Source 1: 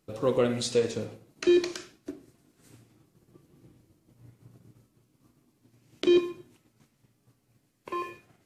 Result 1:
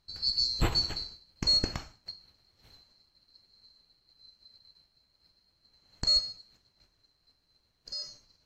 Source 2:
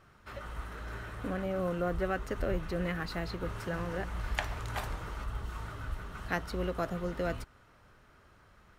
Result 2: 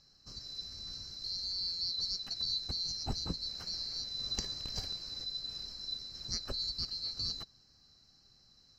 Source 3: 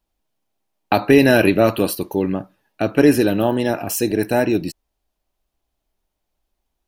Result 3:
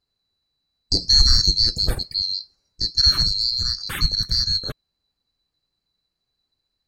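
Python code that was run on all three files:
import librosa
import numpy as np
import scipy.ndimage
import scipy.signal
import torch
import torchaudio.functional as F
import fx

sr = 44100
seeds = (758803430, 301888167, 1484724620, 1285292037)

y = fx.band_swap(x, sr, width_hz=4000)
y = fx.riaa(y, sr, side='playback')
y = y * 10.0 ** (2.5 / 20.0)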